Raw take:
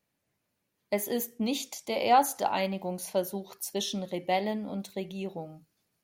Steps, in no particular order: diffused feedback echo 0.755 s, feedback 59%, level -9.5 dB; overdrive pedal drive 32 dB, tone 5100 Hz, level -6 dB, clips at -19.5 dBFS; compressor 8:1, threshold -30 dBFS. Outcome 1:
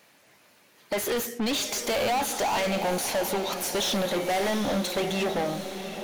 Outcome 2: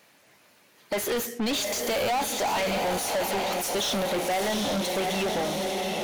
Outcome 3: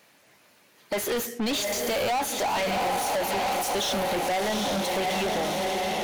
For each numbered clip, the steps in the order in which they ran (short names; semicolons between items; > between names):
compressor > overdrive pedal > diffused feedback echo; compressor > diffused feedback echo > overdrive pedal; diffused feedback echo > compressor > overdrive pedal